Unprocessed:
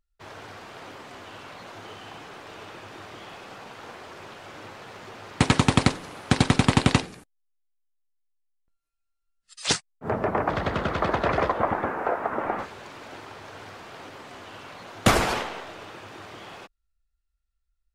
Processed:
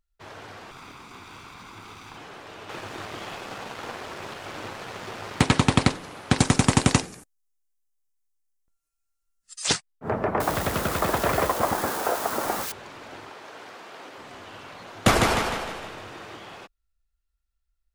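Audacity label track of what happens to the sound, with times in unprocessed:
0.710000	2.170000	comb filter that takes the minimum delay 0.83 ms
2.690000	5.410000	waveshaping leveller passes 2
6.380000	9.690000	resonant high shelf 5 kHz +6.5 dB, Q 1.5
10.400000	12.720000	zero-crossing glitches of -21.5 dBFS
13.300000	14.170000	high-pass 250 Hz
14.920000	16.370000	feedback delay 153 ms, feedback 48%, level -4.5 dB

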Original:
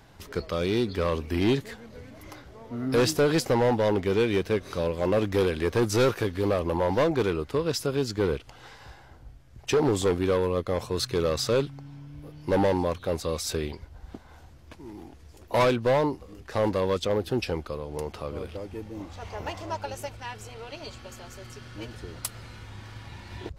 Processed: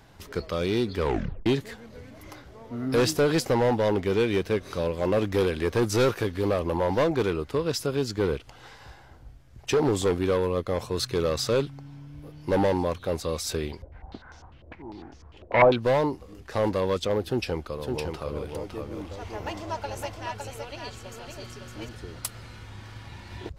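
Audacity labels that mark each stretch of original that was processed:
1.000000	1.000000	tape stop 0.46 s
13.820000	15.760000	step-sequenced low-pass 10 Hz 570–5800 Hz
17.220000	21.890000	delay 559 ms -4.5 dB

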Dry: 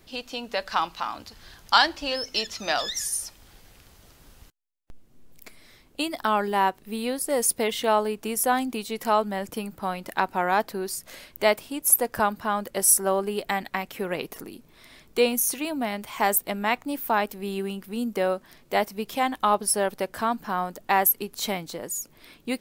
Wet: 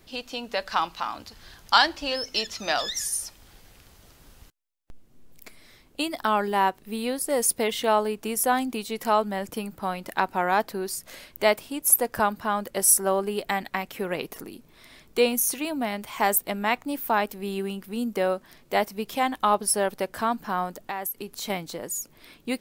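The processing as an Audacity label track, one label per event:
20.820000	21.500000	compression 3:1, threshold -31 dBFS

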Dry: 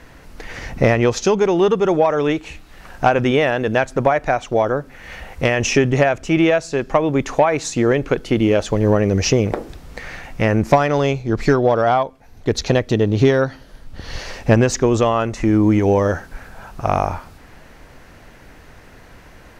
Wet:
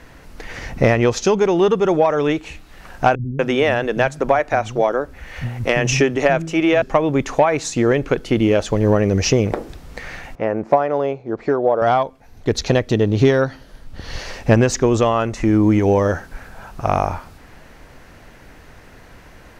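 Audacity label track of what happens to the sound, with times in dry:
3.150000	6.820000	bands offset in time lows, highs 240 ms, split 200 Hz
10.350000	11.820000	band-pass filter 600 Hz, Q 0.96

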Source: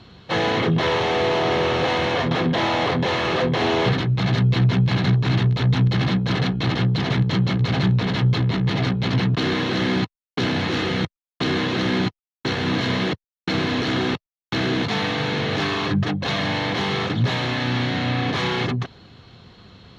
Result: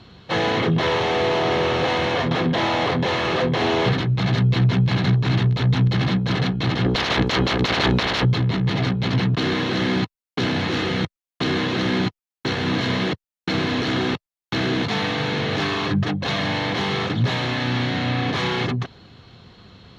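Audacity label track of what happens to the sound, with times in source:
6.840000	8.240000	spectral peaks clipped ceiling under each frame's peak by 22 dB

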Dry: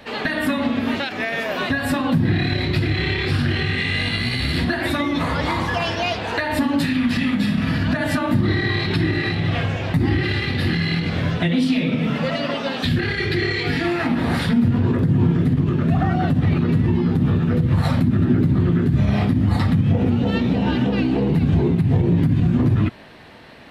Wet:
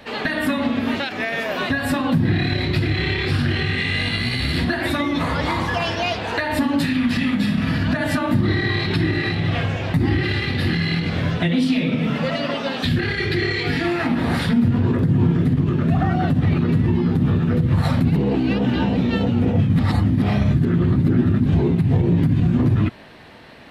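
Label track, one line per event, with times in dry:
18.050000	21.460000	reverse

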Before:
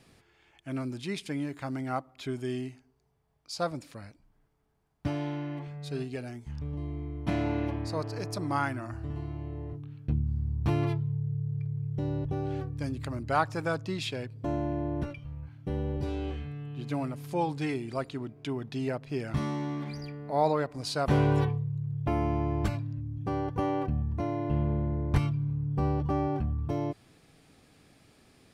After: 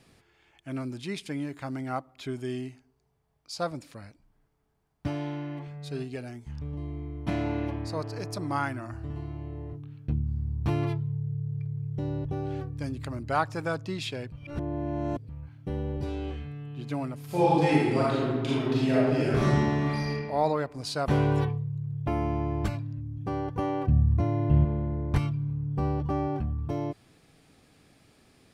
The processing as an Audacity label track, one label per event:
14.320000	15.290000	reverse
17.250000	20.120000	reverb throw, RT60 1.5 s, DRR -8.5 dB
23.870000	24.650000	peaking EQ 97 Hz +11 dB 1.7 oct

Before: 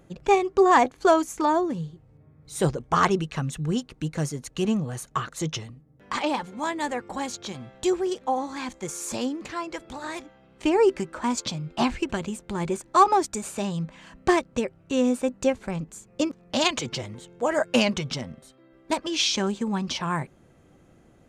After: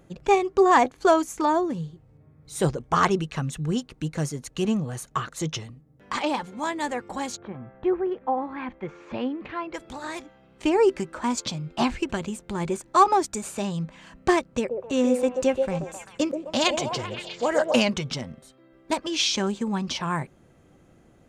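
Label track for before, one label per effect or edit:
7.360000	9.730000	low-pass 1.7 kHz -> 3.3 kHz 24 dB/octave
14.540000	17.750000	repeats whose band climbs or falls 130 ms, band-pass from 510 Hz, each repeat 0.7 oct, level -1 dB

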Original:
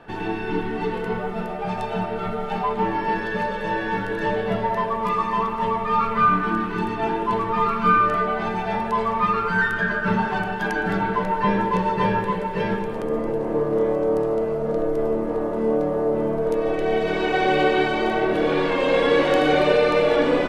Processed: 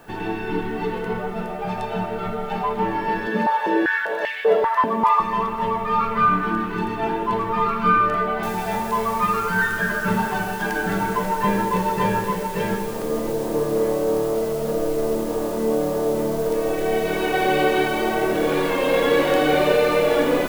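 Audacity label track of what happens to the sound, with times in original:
3.270000	5.200000	step-sequenced high-pass 5.1 Hz 240–2200 Hz
8.430000	8.430000	noise floor step -60 dB -41 dB

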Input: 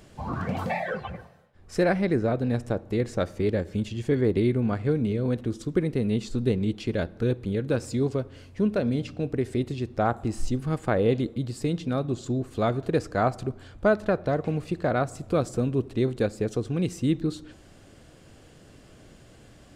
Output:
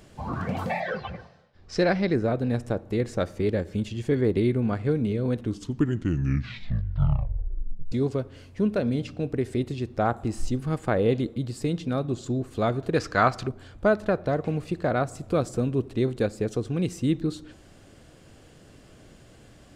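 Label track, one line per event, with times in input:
0.800000	2.160000	resonant low-pass 5 kHz, resonance Q 2.3
5.350000	5.350000	tape stop 2.57 s
12.960000	13.480000	high-order bell 2.5 kHz +8.5 dB 2.9 oct

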